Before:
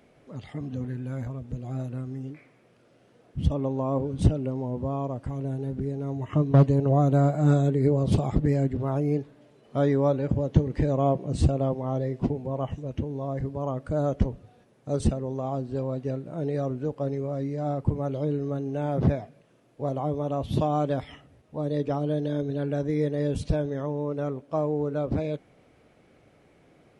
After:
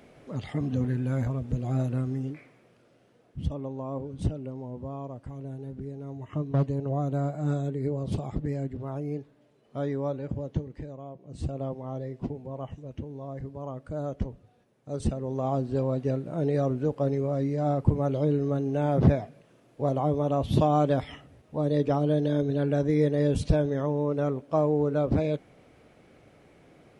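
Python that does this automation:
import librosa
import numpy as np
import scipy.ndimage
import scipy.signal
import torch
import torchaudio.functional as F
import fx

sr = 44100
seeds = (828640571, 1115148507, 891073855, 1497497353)

y = fx.gain(x, sr, db=fx.line((2.06, 5.0), (3.64, -7.5), (10.47, -7.5), (11.1, -20.0), (11.59, -7.0), (14.89, -7.0), (15.47, 2.5)))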